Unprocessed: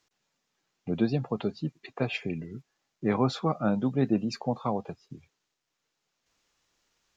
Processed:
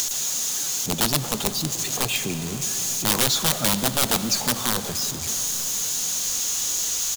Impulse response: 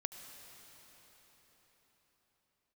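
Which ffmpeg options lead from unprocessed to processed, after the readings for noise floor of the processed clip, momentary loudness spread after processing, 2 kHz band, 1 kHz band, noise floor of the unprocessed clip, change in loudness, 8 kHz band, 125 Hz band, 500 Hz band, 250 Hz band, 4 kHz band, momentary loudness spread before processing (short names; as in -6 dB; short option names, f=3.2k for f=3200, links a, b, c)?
-30 dBFS, 5 LU, +11.0 dB, +5.5 dB, -82 dBFS, +8.0 dB, n/a, +1.5 dB, 0.0 dB, -1.0 dB, +20.5 dB, 15 LU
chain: -filter_complex "[0:a]aeval=exprs='val(0)+0.5*0.02*sgn(val(0))':c=same,equalizer=f=6.6k:t=o:w=0.35:g=11.5,aeval=exprs='(mod(8.91*val(0)+1,2)-1)/8.91':c=same,aexciter=amount=3.5:drive=3.6:freq=3.1k,acompressor=mode=upward:threshold=-24dB:ratio=2.5,aecho=1:1:898:0.0841,asplit=2[a][b];[1:a]atrim=start_sample=2205[c];[b][c]afir=irnorm=-1:irlink=0,volume=4.5dB[d];[a][d]amix=inputs=2:normalize=0,volume=-6.5dB"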